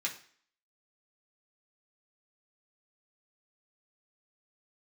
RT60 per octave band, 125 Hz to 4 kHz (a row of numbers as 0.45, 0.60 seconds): 0.40, 0.50, 0.50, 0.50, 0.50, 0.50 seconds